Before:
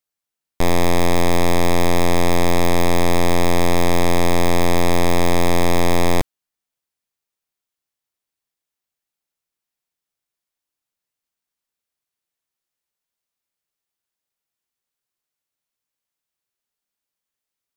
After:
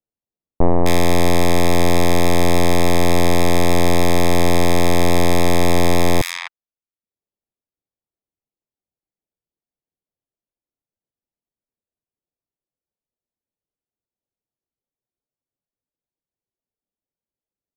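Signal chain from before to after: bands offset in time lows, highs 0.26 s, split 1200 Hz; reverb removal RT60 0.62 s; low-pass opened by the level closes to 590 Hz, open at -17 dBFS; gain +4 dB

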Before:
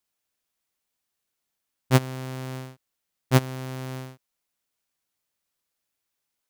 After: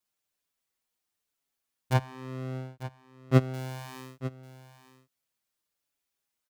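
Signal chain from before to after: 1.93–3.54 LPF 1700 Hz 6 dB/oct; echo 0.895 s -14 dB; endless flanger 5.9 ms -1.1 Hz

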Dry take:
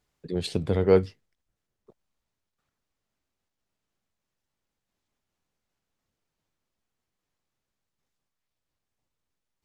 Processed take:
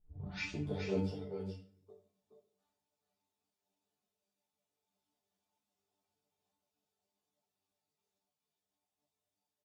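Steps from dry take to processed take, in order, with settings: tape start at the beginning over 0.68 s; small resonant body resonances 720/3600 Hz, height 11 dB, ringing for 45 ms; reverse; compressor 5:1, threshold -29 dBFS, peak gain reduction 15 dB; reverse; HPF 100 Hz 12 dB/oct; bell 140 Hz -5 dB 0.77 oct; comb 4.7 ms, depth 37%; in parallel at +1.5 dB: vocal rider; on the sum: bell 1800 Hz -8 dB 1.2 oct; resonator bank G2 fifth, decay 0.27 s; echo 0.422 s -5.5 dB; shoebox room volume 85 m³, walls mixed, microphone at 0.41 m; ensemble effect; gain +3.5 dB

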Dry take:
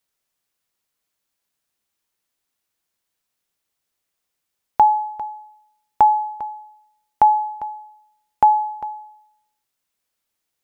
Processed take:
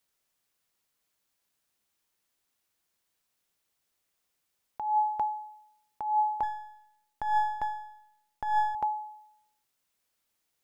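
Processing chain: 6.43–8.75 half-wave gain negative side -7 dB; negative-ratio compressor -22 dBFS, ratio -1; gain -5 dB

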